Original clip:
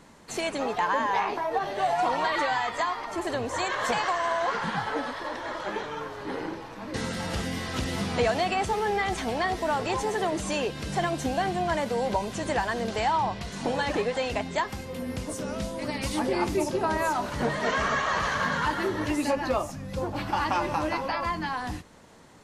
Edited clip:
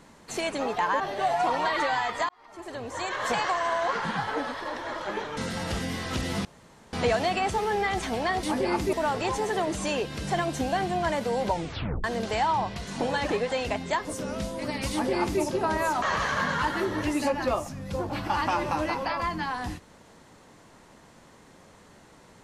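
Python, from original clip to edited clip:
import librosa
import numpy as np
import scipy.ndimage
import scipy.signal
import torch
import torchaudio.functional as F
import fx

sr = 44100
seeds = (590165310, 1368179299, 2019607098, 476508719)

y = fx.edit(x, sr, fx.cut(start_s=1.0, length_s=0.59),
    fx.fade_in_span(start_s=2.88, length_s=1.09),
    fx.cut(start_s=5.96, length_s=1.04),
    fx.insert_room_tone(at_s=8.08, length_s=0.48),
    fx.tape_stop(start_s=12.16, length_s=0.53),
    fx.cut(start_s=14.7, length_s=0.55),
    fx.duplicate(start_s=16.11, length_s=0.5, to_s=9.58),
    fx.cut(start_s=17.22, length_s=0.83), tone=tone)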